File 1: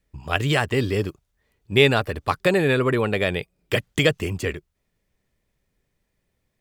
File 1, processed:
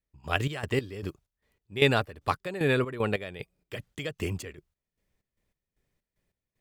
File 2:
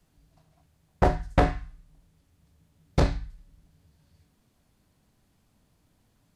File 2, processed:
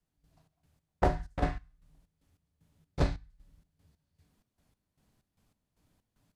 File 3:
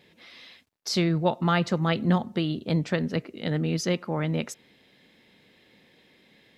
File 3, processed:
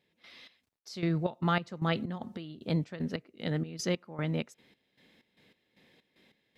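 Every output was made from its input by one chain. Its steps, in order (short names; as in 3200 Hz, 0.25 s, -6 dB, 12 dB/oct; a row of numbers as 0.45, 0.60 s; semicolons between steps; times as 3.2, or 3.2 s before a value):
step gate "...xxx..xx" 190 bpm -12 dB; gain -4.5 dB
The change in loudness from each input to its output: -7.5, -6.0, -7.0 LU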